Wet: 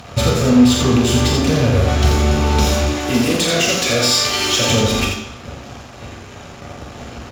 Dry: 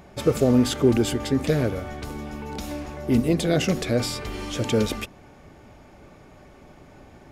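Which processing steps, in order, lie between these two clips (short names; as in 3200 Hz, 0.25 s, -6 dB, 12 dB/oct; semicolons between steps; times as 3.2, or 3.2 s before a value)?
2.84–4.69 HPF 1100 Hz 6 dB/oct; compressor 5:1, threshold -33 dBFS, peak gain reduction 17.5 dB; fuzz box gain 37 dB, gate -45 dBFS; loudspeakers at several distances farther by 15 m -6 dB, 29 m -5 dB; reverb RT60 0.75 s, pre-delay 3 ms, DRR -1.5 dB; gain -7 dB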